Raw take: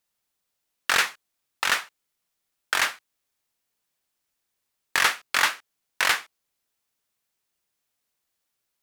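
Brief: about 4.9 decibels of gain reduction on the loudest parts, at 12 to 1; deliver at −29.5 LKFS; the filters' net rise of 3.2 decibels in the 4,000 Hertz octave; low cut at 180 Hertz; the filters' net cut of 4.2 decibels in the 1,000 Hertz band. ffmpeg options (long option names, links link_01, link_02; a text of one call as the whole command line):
ffmpeg -i in.wav -af "highpass=180,equalizer=frequency=1000:width_type=o:gain=-6,equalizer=frequency=4000:width_type=o:gain=4.5,acompressor=threshold=-21dB:ratio=12,volume=-1.5dB" out.wav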